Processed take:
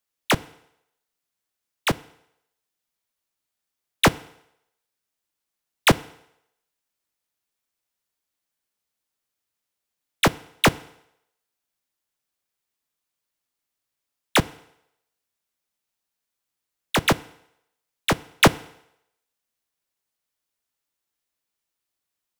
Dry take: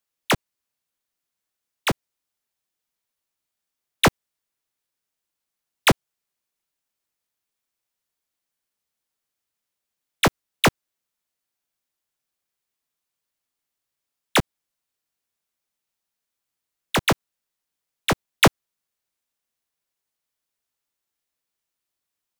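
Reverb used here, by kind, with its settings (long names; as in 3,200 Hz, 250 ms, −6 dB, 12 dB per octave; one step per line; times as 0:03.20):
feedback delay network reverb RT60 0.79 s, low-frequency decay 0.75×, high-frequency decay 0.95×, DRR 17.5 dB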